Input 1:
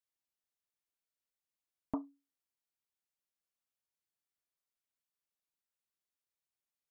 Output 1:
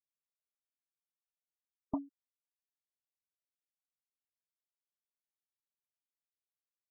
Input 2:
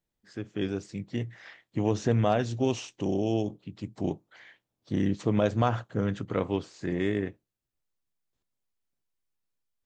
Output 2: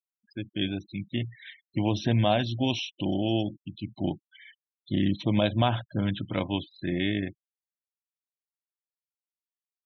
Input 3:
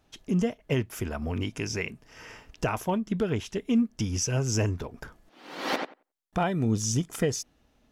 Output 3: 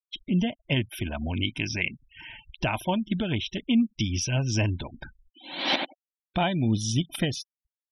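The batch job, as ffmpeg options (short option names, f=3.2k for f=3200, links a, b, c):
-af "superequalizer=7b=0.316:10b=0.562:12b=2:13b=3.16:15b=0.282,afftfilt=real='re*gte(hypot(re,im),0.01)':imag='im*gte(hypot(re,im),0.01)':win_size=1024:overlap=0.75,volume=1.5dB"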